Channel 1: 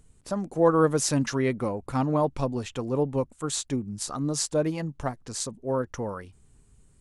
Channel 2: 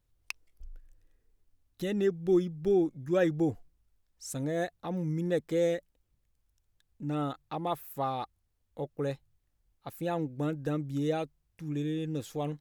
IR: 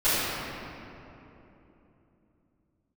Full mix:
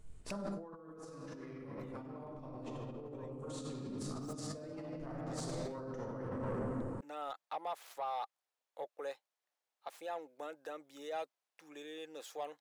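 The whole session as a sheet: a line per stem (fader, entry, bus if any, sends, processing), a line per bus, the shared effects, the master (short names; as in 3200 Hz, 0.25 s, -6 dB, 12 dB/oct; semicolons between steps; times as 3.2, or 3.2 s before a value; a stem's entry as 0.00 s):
-13.5 dB, 0.00 s, send -10.5 dB, high shelf 5400 Hz -7 dB
-5.0 dB, 0.00 s, no send, median filter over 3 samples; limiter -26.5 dBFS, peak gain reduction 10.5 dB; ladder high-pass 490 Hz, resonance 25%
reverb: on, RT60 3.2 s, pre-delay 3 ms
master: negative-ratio compressor -43 dBFS, ratio -1; soft clip -30.5 dBFS, distortion -20 dB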